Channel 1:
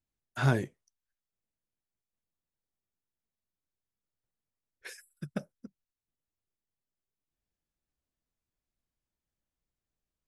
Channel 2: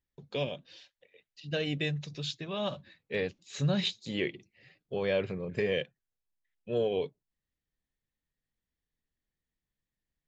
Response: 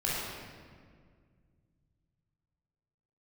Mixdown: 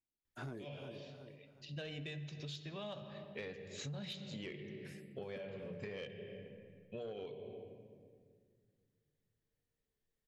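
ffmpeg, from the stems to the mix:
-filter_complex "[0:a]equalizer=f=330:w=0.87:g=11,volume=-14.5dB,asplit=3[a][b][c];[b]volume=-15dB[d];[1:a]bandreject=f=60:t=h:w=6,bandreject=f=120:t=h:w=6,bandreject=f=180:t=h:w=6,bandreject=f=240:t=h:w=6,bandreject=f=300:t=h:w=6,bandreject=f=360:t=h:w=6,bandreject=f=420:t=h:w=6,bandreject=f=480:t=h:w=6,adelay=250,volume=-3dB,asplit=2[e][f];[f]volume=-17.5dB[g];[c]apad=whole_len=464313[h];[e][h]sidechaincompress=threshold=-47dB:ratio=8:attack=16:release=671[i];[2:a]atrim=start_sample=2205[j];[g][j]afir=irnorm=-1:irlink=0[k];[d]aecho=0:1:365|730|1095|1460|1825:1|0.38|0.144|0.0549|0.0209[l];[a][i][k][l]amix=inputs=4:normalize=0,asoftclip=type=tanh:threshold=-24.5dB,acompressor=threshold=-43dB:ratio=6"

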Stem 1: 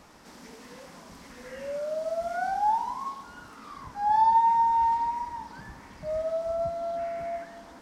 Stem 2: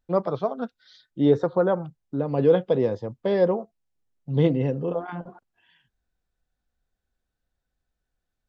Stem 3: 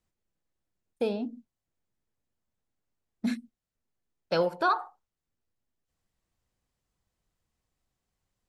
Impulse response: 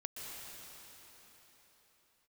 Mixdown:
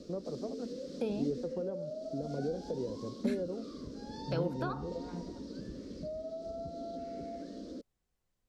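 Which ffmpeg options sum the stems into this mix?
-filter_complex "[0:a]firequalizer=gain_entry='entry(130,0);entry(250,10);entry(360,10);entry(550,9);entry(840,-30);entry(1200,-14);entry(2000,-17);entry(4200,4);entry(11000,-16)':delay=0.05:min_phase=1,acompressor=threshold=-37dB:ratio=6,volume=-0.5dB[a];[1:a]lowshelf=f=690:t=q:w=1.5:g=8.5,acompressor=threshold=-30dB:ratio=2,volume=-12.5dB[b];[2:a]volume=-4dB[c];[a][b][c]amix=inputs=3:normalize=0,acrossover=split=420[d][e];[e]acompressor=threshold=-39dB:ratio=5[f];[d][f]amix=inputs=2:normalize=0"

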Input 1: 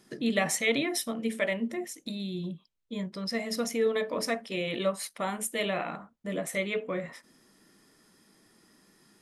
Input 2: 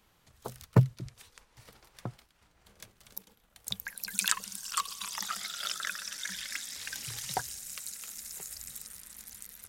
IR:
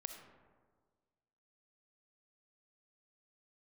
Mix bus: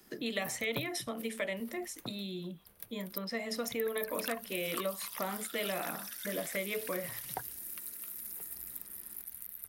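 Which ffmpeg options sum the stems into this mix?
-filter_complex "[0:a]highpass=180,volume=-1dB[a];[1:a]highshelf=f=5k:g=-6,aexciter=amount=14.1:drive=4.3:freq=10k,volume=-5dB[b];[a][b]amix=inputs=2:normalize=0,acrossover=split=160|490|3700[c][d][e][f];[c]acompressor=threshold=-53dB:ratio=4[g];[d]acompressor=threshold=-41dB:ratio=4[h];[e]acompressor=threshold=-36dB:ratio=4[i];[f]acompressor=threshold=-40dB:ratio=4[j];[g][h][i][j]amix=inputs=4:normalize=0"

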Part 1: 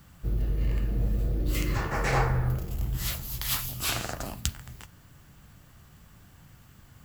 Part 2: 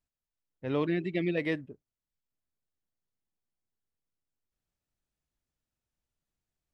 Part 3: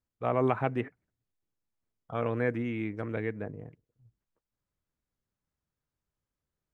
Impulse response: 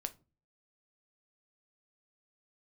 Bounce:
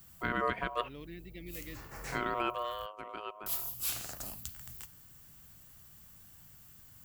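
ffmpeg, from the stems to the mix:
-filter_complex "[0:a]volume=10.5dB,asoftclip=hard,volume=-10.5dB,volume=-9.5dB,asplit=3[a][b][c];[a]atrim=end=2.86,asetpts=PTS-STARTPTS,afade=t=out:st=2.856:d=0.004:c=hsin[d];[b]atrim=start=2.86:end=3.46,asetpts=PTS-STARTPTS,volume=0[e];[c]atrim=start=3.46,asetpts=PTS-STARTPTS,afade=t=in:d=0.004:c=hsin[f];[d][e][f]concat=n=3:v=0:a=1[g];[1:a]equalizer=f=810:t=o:w=1.7:g=-10,adelay=200,volume=-15.5dB[h];[2:a]aeval=exprs='val(0)*sin(2*PI*840*n/s)':c=same,afade=t=out:st=2.53:d=0.35:silence=0.398107,asplit=2[i][j];[j]apad=whole_len=310799[k];[g][k]sidechaincompress=threshold=-46dB:ratio=8:attack=16:release=1390[l];[l][h][i]amix=inputs=3:normalize=0,aemphasis=mode=production:type=75kf,alimiter=limit=-19dB:level=0:latency=1:release=171"

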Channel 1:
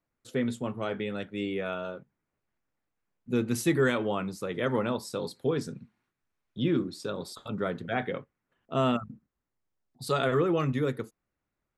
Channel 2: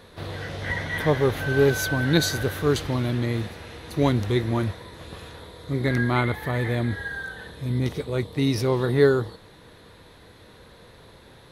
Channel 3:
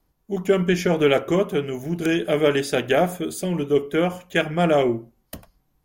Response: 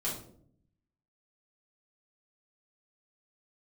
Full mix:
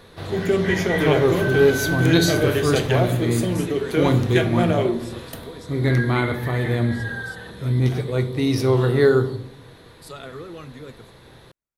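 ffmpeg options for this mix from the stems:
-filter_complex "[0:a]highshelf=f=3.8k:g=10,volume=-11.5dB[a];[1:a]volume=-0.5dB,asplit=2[b][c];[c]volume=-9dB[d];[2:a]acompressor=threshold=-20dB:ratio=2.5,volume=-2dB,asplit=2[e][f];[f]volume=-8dB[g];[3:a]atrim=start_sample=2205[h];[d][g]amix=inputs=2:normalize=0[i];[i][h]afir=irnorm=-1:irlink=0[j];[a][b][e][j]amix=inputs=4:normalize=0"

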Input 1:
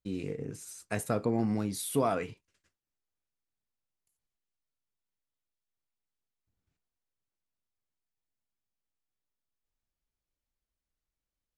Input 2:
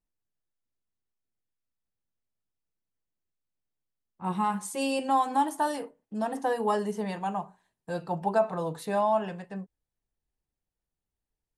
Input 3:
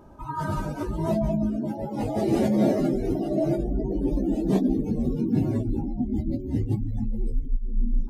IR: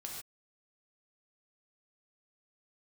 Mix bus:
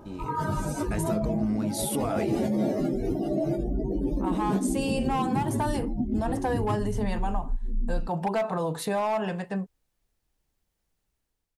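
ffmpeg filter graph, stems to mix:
-filter_complex "[0:a]volume=-3.5dB,asplit=2[a][b];[b]volume=-19.5dB[c];[1:a]volume=21.5dB,asoftclip=hard,volume=-21.5dB,volume=-2.5dB[d];[2:a]volume=2.5dB[e];[a][d]amix=inputs=2:normalize=0,dynaudnorm=f=250:g=5:m=11dB,alimiter=limit=-17dB:level=0:latency=1:release=24,volume=0dB[f];[c]aecho=0:1:684|1368|2052|2736|3420:1|0.35|0.122|0.0429|0.015[g];[e][f][g]amix=inputs=3:normalize=0,acompressor=threshold=-26dB:ratio=2.5"

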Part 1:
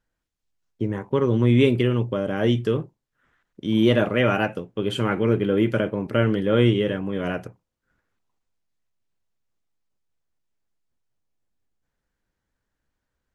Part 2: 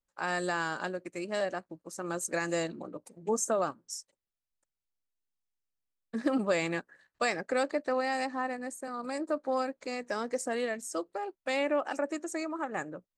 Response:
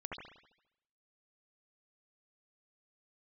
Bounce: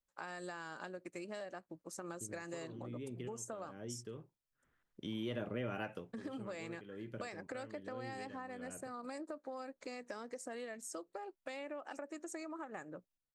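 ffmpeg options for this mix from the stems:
-filter_complex "[0:a]acompressor=threshold=-21dB:ratio=2,acrossover=split=590[a][b];[a]aeval=exprs='val(0)*(1-0.5/2+0.5/2*cos(2*PI*1.2*n/s))':c=same[c];[b]aeval=exprs='val(0)*(1-0.5/2-0.5/2*cos(2*PI*1.2*n/s))':c=same[d];[c][d]amix=inputs=2:normalize=0,adelay=1400,volume=-7dB[e];[1:a]acompressor=threshold=-37dB:ratio=4,volume=-4dB,asplit=2[f][g];[g]apad=whole_len=650144[h];[e][h]sidechaincompress=threshold=-53dB:ratio=20:attack=7.3:release=884[i];[i][f]amix=inputs=2:normalize=0,acompressor=threshold=-42dB:ratio=2"

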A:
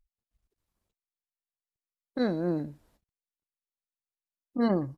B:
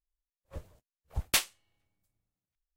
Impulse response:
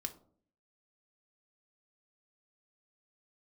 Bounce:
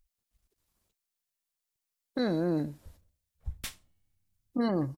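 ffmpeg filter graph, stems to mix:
-filter_complex "[0:a]highshelf=f=3.2k:g=7.5,alimiter=limit=-22.5dB:level=0:latency=1:release=28,volume=2.5dB,asplit=2[a][b];[1:a]asubboost=boost=7.5:cutoff=200,adelay=2300,volume=-12.5dB,asplit=2[c][d];[d]volume=-6.5dB[e];[b]apad=whole_len=223172[f];[c][f]sidechaincompress=threshold=-46dB:ratio=8:attack=16:release=1010[g];[2:a]atrim=start_sample=2205[h];[e][h]afir=irnorm=-1:irlink=0[i];[a][g][i]amix=inputs=3:normalize=0"

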